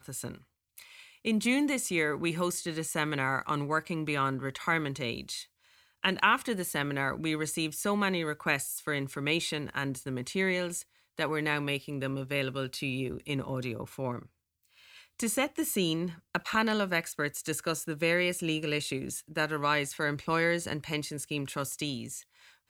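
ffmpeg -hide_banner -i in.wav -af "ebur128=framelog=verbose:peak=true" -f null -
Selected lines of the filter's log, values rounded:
Integrated loudness:
  I:         -31.1 LUFS
  Threshold: -41.5 LUFS
Loudness range:
  LRA:         3.8 LU
  Threshold: -51.4 LUFS
  LRA low:   -33.8 LUFS
  LRA high:  -30.0 LUFS
True peak:
  Peak:       -9.8 dBFS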